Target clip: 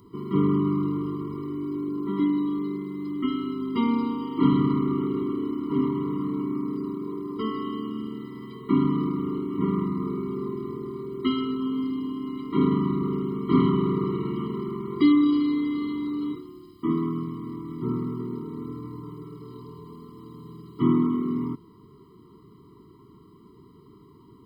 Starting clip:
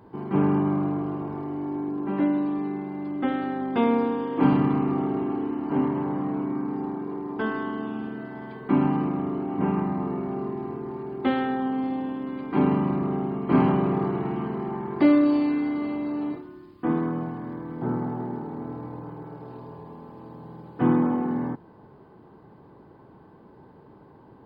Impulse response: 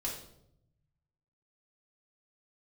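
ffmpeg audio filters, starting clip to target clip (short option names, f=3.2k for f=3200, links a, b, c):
-af "aexciter=amount=2.7:drive=7.3:freq=3.1k,afftfilt=real='re*eq(mod(floor(b*sr/1024/470),2),0)':imag='im*eq(mod(floor(b*sr/1024/470),2),0)':win_size=1024:overlap=0.75"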